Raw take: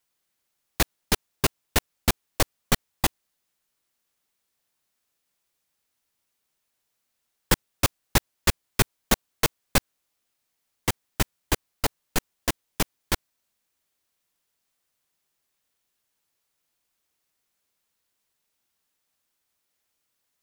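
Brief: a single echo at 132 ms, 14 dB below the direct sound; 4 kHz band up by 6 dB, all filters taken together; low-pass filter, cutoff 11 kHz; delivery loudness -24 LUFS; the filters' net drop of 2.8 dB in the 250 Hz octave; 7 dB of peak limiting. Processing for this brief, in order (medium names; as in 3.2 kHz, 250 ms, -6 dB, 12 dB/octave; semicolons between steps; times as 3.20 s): low-pass 11 kHz; peaking EQ 250 Hz -4 dB; peaking EQ 4 kHz +7.5 dB; peak limiter -9.5 dBFS; delay 132 ms -14 dB; trim +4 dB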